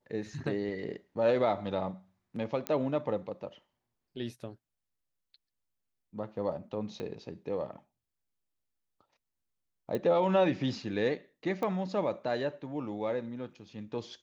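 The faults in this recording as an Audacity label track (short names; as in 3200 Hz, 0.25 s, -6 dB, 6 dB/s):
2.670000	2.670000	pop -17 dBFS
7.000000	7.000000	pop -26 dBFS
9.950000	9.950000	pop -22 dBFS
11.630000	11.630000	pop -22 dBFS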